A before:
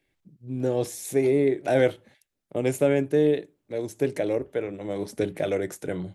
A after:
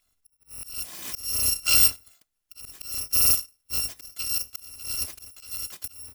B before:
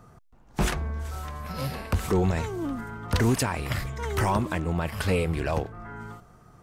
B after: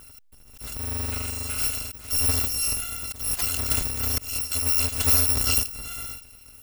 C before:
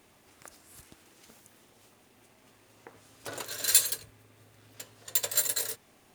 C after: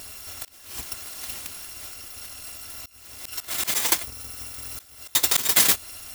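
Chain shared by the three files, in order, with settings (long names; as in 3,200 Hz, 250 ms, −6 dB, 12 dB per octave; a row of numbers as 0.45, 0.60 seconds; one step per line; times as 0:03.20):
samples in bit-reversed order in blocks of 256 samples
volume swells 521 ms
loudness normalisation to −23 LKFS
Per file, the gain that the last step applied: +2.5, +5.0, +21.5 decibels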